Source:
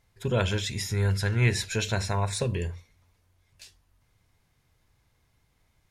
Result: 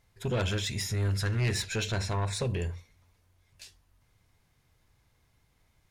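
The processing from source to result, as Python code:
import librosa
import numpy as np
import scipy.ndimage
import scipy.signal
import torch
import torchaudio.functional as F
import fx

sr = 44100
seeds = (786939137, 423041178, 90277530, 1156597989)

y = fx.high_shelf(x, sr, hz=10000.0, db=-9.5, at=(1.62, 2.45))
y = 10.0 ** (-23.5 / 20.0) * np.tanh(y / 10.0 ** (-23.5 / 20.0))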